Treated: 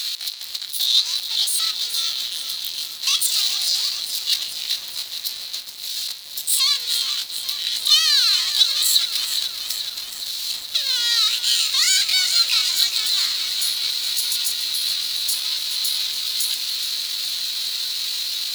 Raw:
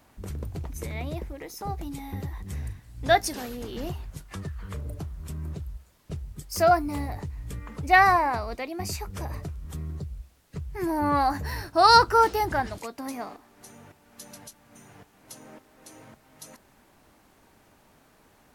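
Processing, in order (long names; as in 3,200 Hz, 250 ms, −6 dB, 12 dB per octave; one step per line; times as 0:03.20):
downward compressor 2 to 1, threshold −29 dBFS, peak gain reduction 10.5 dB
power curve on the samples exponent 0.35
high-pass with resonance 2,500 Hz, resonance Q 7.9
pitch shifter +8.5 semitones
feedback echo at a low word length 422 ms, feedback 80%, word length 6 bits, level −9.5 dB
level +3.5 dB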